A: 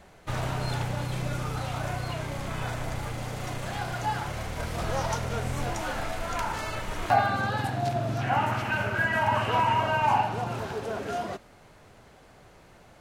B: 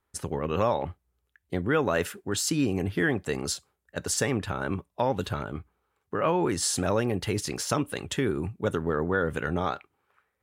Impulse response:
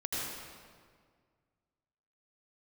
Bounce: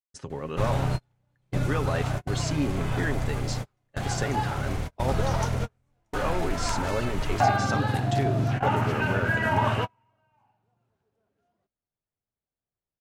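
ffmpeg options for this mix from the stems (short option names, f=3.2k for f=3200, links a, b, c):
-filter_complex "[0:a]lowshelf=f=320:g=7.5,adelay=300,volume=-1dB[a];[1:a]lowpass=f=7.1k:w=0.5412,lowpass=f=7.1k:w=1.3066,agate=range=-33dB:threshold=-51dB:ratio=3:detection=peak,aecho=1:1:7.4:0.34,volume=-5dB,asplit=2[b][c];[c]apad=whole_len=586604[d];[a][d]sidechaingate=range=-45dB:threshold=-45dB:ratio=16:detection=peak[e];[e][b]amix=inputs=2:normalize=0"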